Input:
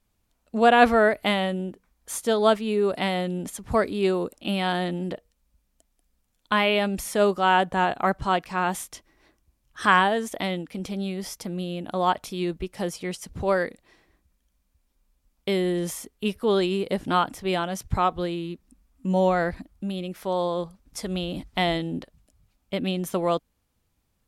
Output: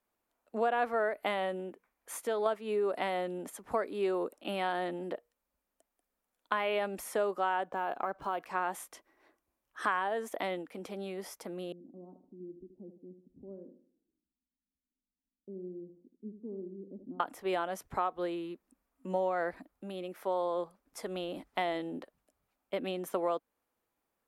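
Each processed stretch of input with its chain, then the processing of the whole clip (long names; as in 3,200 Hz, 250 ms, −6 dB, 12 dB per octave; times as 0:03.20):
0:01.59–0:02.46: parametric band 2,300 Hz +5 dB 0.66 octaves + downward compressor 2 to 1, threshold −26 dBFS
0:07.68–0:08.40: notch filter 1,900 Hz, Q 7.3 + downward compressor 4 to 1, threshold −25 dBFS + linearly interpolated sample-rate reduction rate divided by 3×
0:11.72–0:17.20: transistor ladder low-pass 290 Hz, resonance 55% + repeating echo 77 ms, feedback 37%, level −9.5 dB
whole clip: three-way crossover with the lows and the highs turned down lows −22 dB, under 290 Hz, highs −13 dB, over 2,100 Hz; downward compressor 5 to 1, threshold −25 dBFS; high-shelf EQ 9,500 Hz +11.5 dB; level −2.5 dB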